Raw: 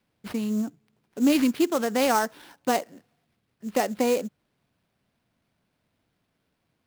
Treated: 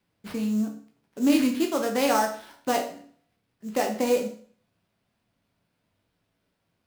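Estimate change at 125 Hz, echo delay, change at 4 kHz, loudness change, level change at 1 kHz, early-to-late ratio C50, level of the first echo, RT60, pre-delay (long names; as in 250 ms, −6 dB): can't be measured, no echo audible, 0.0 dB, −0.5 dB, 0.0 dB, 8.5 dB, no echo audible, 0.50 s, 11 ms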